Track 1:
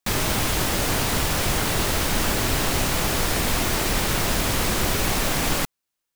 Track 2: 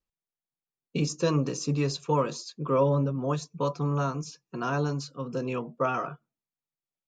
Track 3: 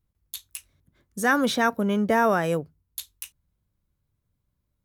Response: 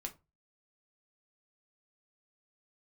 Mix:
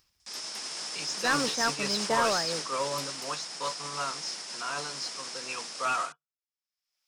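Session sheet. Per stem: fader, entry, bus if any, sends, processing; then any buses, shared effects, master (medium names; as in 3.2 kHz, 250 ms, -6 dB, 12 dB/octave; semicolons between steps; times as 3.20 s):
+2.0 dB, 0.20 s, bus A, no send, echo send -18.5 dB, Chebyshev band-pass 150–9600 Hz, order 5; tone controls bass -5 dB, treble +11 dB; auto duck -16 dB, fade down 1.70 s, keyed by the second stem
+0.5 dB, 0.00 s, bus A, send -12.5 dB, no echo send, tilt shelf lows -10 dB, about 660 Hz
-6.0 dB, 0.00 s, no bus, no send, no echo send, none
bus A: 0.0 dB, peaking EQ 5.2 kHz +14.5 dB 0.29 oct; peak limiter -21.5 dBFS, peak gain reduction 19.5 dB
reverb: on, RT60 0.25 s, pre-delay 4 ms
echo: delay 272 ms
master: expander -21 dBFS; upward compressor, threshold -44 dBFS; overdrive pedal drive 11 dB, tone 4.6 kHz, clips at -17.5 dBFS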